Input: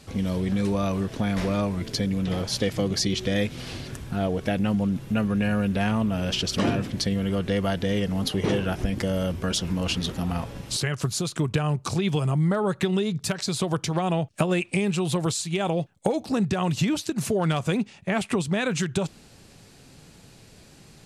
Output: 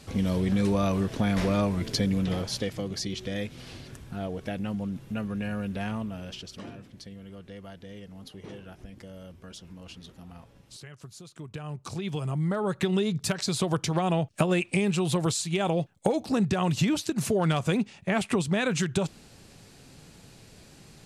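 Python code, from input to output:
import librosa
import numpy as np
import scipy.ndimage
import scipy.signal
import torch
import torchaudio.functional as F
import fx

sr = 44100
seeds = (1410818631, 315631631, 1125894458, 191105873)

y = fx.gain(x, sr, db=fx.line((2.17, 0.0), (2.82, -8.0), (5.95, -8.0), (6.68, -19.0), (11.28, -19.0), (11.82, -10.0), (13.01, -1.0)))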